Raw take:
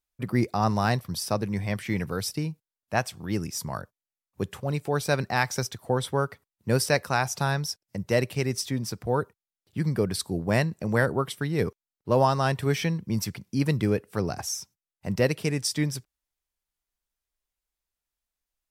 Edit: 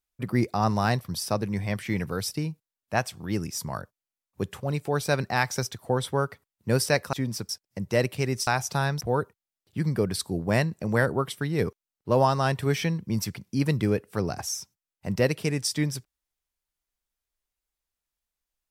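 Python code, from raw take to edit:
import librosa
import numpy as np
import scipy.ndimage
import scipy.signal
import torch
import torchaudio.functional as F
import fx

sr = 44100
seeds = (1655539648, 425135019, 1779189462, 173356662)

y = fx.edit(x, sr, fx.swap(start_s=7.13, length_s=0.54, other_s=8.65, other_length_s=0.36), tone=tone)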